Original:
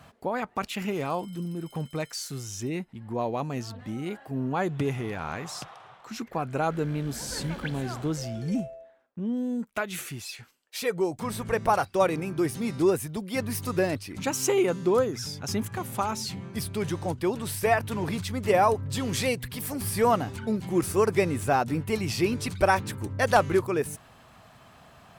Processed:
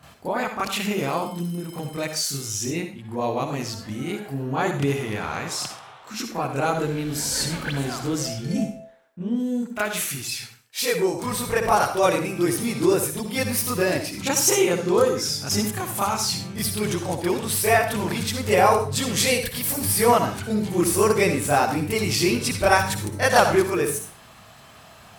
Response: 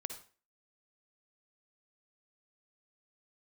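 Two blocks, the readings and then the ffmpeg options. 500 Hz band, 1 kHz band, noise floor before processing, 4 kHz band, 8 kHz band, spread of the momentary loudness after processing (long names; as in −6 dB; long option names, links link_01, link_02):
+4.0 dB, +4.5 dB, −54 dBFS, +9.5 dB, +11.0 dB, 11 LU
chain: -filter_complex "[0:a]asplit=2[link_01][link_02];[1:a]atrim=start_sample=2205,highshelf=frequency=2100:gain=9,adelay=29[link_03];[link_02][link_03]afir=irnorm=-1:irlink=0,volume=6.5dB[link_04];[link_01][link_04]amix=inputs=2:normalize=0,volume=-2.5dB"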